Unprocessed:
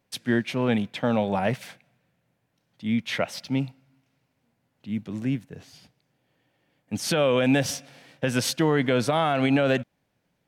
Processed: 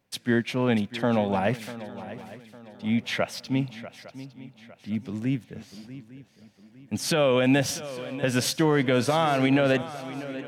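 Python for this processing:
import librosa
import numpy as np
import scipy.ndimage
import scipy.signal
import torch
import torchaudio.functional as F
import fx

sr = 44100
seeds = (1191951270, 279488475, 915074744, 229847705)

y = fx.echo_swing(x, sr, ms=857, ratio=3, feedback_pct=37, wet_db=-15.0)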